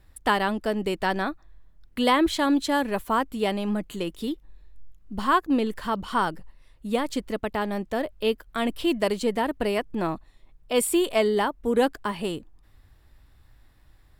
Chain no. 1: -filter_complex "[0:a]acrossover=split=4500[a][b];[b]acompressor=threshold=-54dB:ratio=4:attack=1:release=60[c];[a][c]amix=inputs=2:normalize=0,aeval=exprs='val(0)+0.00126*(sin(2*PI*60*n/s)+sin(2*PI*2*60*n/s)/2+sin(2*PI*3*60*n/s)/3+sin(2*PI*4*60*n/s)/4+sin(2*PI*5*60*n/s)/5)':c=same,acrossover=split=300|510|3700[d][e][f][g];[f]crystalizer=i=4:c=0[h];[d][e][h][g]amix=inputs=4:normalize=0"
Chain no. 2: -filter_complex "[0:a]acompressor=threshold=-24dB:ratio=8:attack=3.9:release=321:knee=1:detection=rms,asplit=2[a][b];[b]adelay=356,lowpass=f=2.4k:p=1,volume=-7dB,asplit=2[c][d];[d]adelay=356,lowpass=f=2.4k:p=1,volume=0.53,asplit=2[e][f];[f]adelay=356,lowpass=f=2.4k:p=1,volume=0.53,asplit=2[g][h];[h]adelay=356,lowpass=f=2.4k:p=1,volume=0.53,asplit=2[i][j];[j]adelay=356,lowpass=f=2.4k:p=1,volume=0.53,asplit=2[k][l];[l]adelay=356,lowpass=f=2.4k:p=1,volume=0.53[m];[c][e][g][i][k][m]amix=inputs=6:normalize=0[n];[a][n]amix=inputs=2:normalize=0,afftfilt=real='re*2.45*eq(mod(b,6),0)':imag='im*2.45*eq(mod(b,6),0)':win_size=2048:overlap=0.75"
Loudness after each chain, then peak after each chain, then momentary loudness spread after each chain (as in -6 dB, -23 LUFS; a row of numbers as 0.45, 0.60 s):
-25.0, -35.0 LUFS; -6.5, -18.0 dBFS; 9, 11 LU